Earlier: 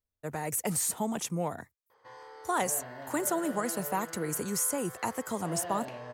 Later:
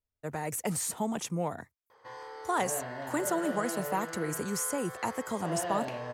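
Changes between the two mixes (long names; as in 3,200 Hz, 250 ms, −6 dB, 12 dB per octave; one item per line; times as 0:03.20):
speech: add high-shelf EQ 9,400 Hz −8 dB
background +4.5 dB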